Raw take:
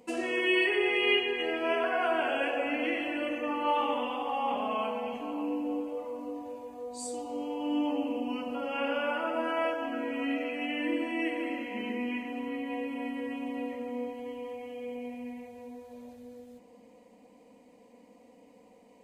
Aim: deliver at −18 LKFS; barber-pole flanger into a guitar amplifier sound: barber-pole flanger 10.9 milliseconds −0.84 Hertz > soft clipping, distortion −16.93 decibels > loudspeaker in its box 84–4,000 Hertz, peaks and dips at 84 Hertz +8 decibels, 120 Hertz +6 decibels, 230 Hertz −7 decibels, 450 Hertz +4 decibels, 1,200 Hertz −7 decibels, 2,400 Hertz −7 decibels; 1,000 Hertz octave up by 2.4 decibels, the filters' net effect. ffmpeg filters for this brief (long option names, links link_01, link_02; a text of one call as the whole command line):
ffmpeg -i in.wav -filter_complex "[0:a]equalizer=frequency=1000:width_type=o:gain=5,asplit=2[link_01][link_02];[link_02]adelay=10.9,afreqshift=-0.84[link_03];[link_01][link_03]amix=inputs=2:normalize=1,asoftclip=threshold=-24dB,highpass=84,equalizer=frequency=84:width_type=q:width=4:gain=8,equalizer=frequency=120:width_type=q:width=4:gain=6,equalizer=frequency=230:width_type=q:width=4:gain=-7,equalizer=frequency=450:width_type=q:width=4:gain=4,equalizer=frequency=1200:width_type=q:width=4:gain=-7,equalizer=frequency=2400:width_type=q:width=4:gain=-7,lowpass=frequency=4000:width=0.5412,lowpass=frequency=4000:width=1.3066,volume=17.5dB" out.wav